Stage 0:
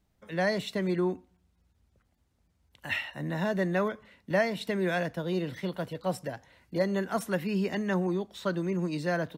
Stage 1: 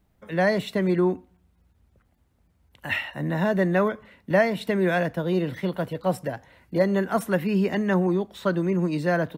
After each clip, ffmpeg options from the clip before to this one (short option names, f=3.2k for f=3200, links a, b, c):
-af "equalizer=f=5.6k:w=0.71:g=-7,volume=6.5dB"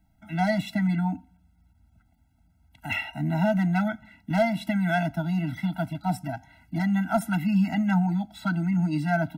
-filter_complex "[0:a]acrossover=split=340[a][b];[b]volume=17dB,asoftclip=hard,volume=-17dB[c];[a][c]amix=inputs=2:normalize=0,afftfilt=real='re*eq(mod(floor(b*sr/1024/320),2),0)':imag='im*eq(mod(floor(b*sr/1024/320),2),0)':win_size=1024:overlap=0.75,volume=1.5dB"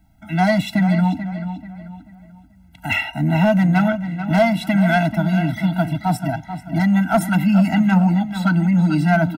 -filter_complex "[0:a]asoftclip=type=tanh:threshold=-15.5dB,asplit=2[a][b];[b]adelay=437,lowpass=f=3.7k:p=1,volume=-10dB,asplit=2[c][d];[d]adelay=437,lowpass=f=3.7k:p=1,volume=0.36,asplit=2[e][f];[f]adelay=437,lowpass=f=3.7k:p=1,volume=0.36,asplit=2[g][h];[h]adelay=437,lowpass=f=3.7k:p=1,volume=0.36[i];[c][e][g][i]amix=inputs=4:normalize=0[j];[a][j]amix=inputs=2:normalize=0,volume=9dB"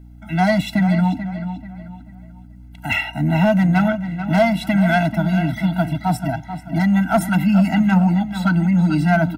-af "aeval=exprs='val(0)+0.01*(sin(2*PI*60*n/s)+sin(2*PI*2*60*n/s)/2+sin(2*PI*3*60*n/s)/3+sin(2*PI*4*60*n/s)/4+sin(2*PI*5*60*n/s)/5)':c=same"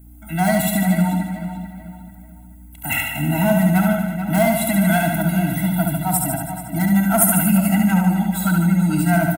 -filter_complex "[0:a]aexciter=amount=9.8:drive=6.2:freq=7.6k,asplit=2[a][b];[b]aecho=0:1:70|147|231.7|324.9|427.4:0.631|0.398|0.251|0.158|0.1[c];[a][c]amix=inputs=2:normalize=0,volume=-3dB"